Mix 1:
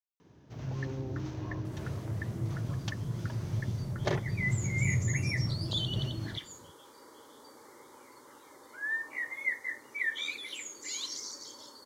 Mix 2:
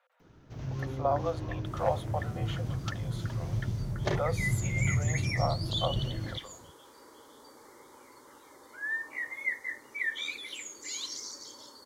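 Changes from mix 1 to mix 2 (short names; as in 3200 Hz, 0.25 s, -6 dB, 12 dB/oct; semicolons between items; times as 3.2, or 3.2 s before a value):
speech: unmuted; master: remove HPF 80 Hz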